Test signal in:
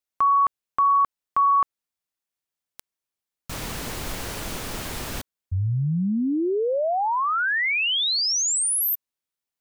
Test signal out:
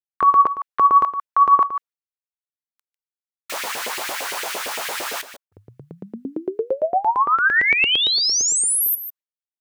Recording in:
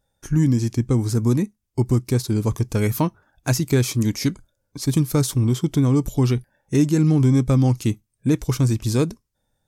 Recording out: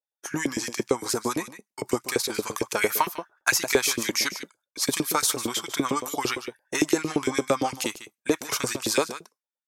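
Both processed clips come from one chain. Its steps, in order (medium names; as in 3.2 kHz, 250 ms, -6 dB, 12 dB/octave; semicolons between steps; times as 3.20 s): expander -37 dBFS, range -33 dB; delay 149 ms -13 dB; LFO high-pass saw up 8.8 Hz 410–2500 Hz; in parallel at -2 dB: compression, threshold -25 dBFS; on the sum: dynamic bell 500 Hz, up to -4 dB, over -30 dBFS, Q 1.2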